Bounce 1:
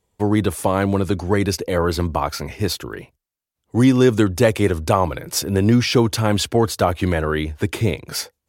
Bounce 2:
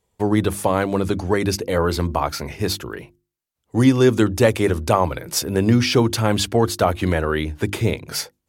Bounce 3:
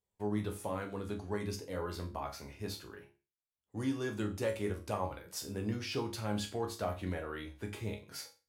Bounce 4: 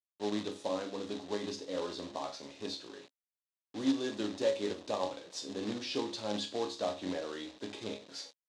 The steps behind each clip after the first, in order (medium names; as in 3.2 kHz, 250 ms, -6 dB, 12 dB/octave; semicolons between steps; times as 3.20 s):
hum notches 50/100/150/200/250/300/350 Hz
chord resonator C#2 sus4, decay 0.32 s; trim -7.5 dB
companded quantiser 4-bit; cabinet simulation 250–7000 Hz, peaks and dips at 270 Hz +7 dB, 560 Hz +5 dB, 1.4 kHz -7 dB, 2.2 kHz -5 dB, 3.8 kHz +8 dB